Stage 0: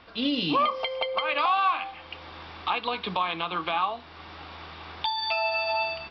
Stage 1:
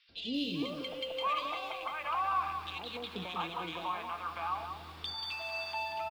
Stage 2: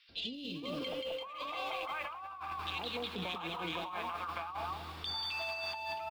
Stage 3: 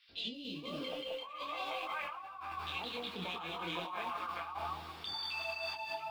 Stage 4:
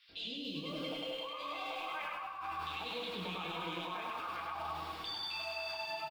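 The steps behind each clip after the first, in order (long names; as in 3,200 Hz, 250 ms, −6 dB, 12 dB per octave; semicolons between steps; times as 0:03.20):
in parallel at −9 dB: soft clipping −25 dBFS, distortion −11 dB; on the sum: three-band delay without the direct sound highs, lows, mids 90/690 ms, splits 640/2,300 Hz; feedback echo at a low word length 186 ms, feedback 35%, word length 8 bits, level −7 dB; level −9 dB
compressor whose output falls as the input rises −40 dBFS, ratio −1
low-shelf EQ 82 Hz −6.5 dB; micro pitch shift up and down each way 17 cents; level +2.5 dB
comb filter 6.3 ms, depth 33%; brickwall limiter −34.5 dBFS, peak gain reduction 8 dB; on a send: repeating echo 101 ms, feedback 39%, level −3 dB; on the sum: level +1 dB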